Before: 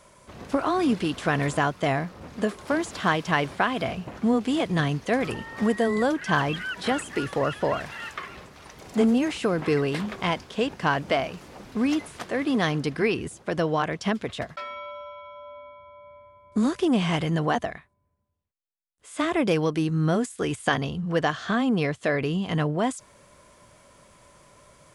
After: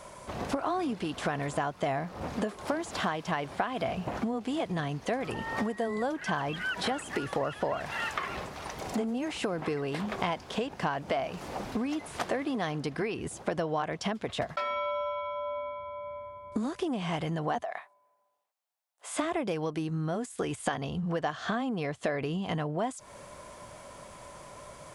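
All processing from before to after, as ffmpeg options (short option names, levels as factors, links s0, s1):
-filter_complex "[0:a]asettb=1/sr,asplit=3[s0][s1][s2];[s0]atrim=end=17.634[s3];[s1]atrim=start=17.63:end=19.16,asetpts=PTS-STARTPTS,afade=t=in:d=0.004:c=qsin,afade=t=out:st=1.526:d=0.004:c=qsin,highpass=f=700:t=q:w=1.8,acompressor=threshold=0.0251:ratio=4:attack=3.2:release=140:knee=1:detection=peak[s4];[s2]atrim=start=19.156[s5];[s3][s4]acrossfade=d=0.004:c1=hsin:c2=qsin[s6];[s6][s5]acrossfade=d=0.004:c1=qsin:c2=hsin,acompressor=threshold=0.02:ratio=16,equalizer=f=760:t=o:w=0.97:g=6,volume=1.68"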